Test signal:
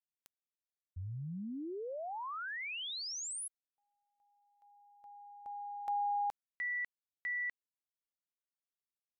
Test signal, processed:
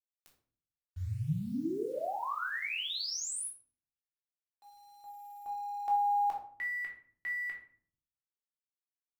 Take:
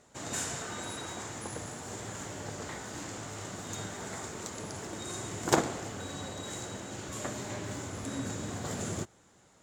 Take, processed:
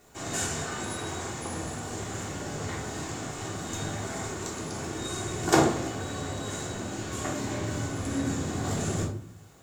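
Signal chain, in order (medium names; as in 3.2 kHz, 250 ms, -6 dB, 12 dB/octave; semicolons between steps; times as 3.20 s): bit crusher 11-bit; simulated room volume 550 m³, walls furnished, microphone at 3.4 m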